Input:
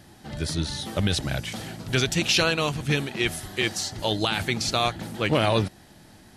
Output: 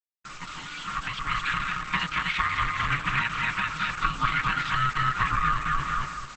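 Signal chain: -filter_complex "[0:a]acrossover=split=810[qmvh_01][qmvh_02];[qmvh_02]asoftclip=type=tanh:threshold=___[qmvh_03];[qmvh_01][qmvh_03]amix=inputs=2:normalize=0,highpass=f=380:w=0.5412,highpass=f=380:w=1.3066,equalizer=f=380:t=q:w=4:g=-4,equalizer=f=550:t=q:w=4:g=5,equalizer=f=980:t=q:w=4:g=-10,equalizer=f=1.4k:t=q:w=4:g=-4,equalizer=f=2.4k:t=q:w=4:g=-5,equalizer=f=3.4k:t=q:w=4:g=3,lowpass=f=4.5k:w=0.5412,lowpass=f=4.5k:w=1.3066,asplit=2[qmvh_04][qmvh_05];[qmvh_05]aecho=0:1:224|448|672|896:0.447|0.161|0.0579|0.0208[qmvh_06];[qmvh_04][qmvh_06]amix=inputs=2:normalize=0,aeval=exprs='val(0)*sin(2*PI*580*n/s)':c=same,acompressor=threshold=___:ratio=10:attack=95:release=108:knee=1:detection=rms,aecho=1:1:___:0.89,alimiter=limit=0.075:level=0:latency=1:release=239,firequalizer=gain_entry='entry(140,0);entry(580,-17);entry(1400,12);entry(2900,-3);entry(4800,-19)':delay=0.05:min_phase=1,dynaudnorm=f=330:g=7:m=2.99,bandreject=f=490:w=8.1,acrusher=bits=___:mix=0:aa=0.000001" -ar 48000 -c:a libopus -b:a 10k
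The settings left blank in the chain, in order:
0.0891, 0.0112, 6.4, 6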